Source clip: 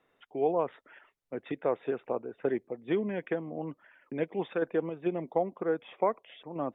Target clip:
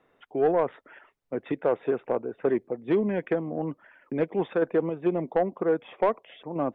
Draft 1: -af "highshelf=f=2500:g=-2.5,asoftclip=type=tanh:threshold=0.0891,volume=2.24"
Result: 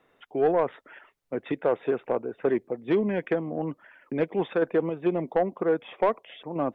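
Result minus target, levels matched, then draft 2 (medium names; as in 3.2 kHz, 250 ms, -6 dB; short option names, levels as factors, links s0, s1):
4 kHz band +3.5 dB
-af "highshelf=f=2500:g=-9,asoftclip=type=tanh:threshold=0.0891,volume=2.24"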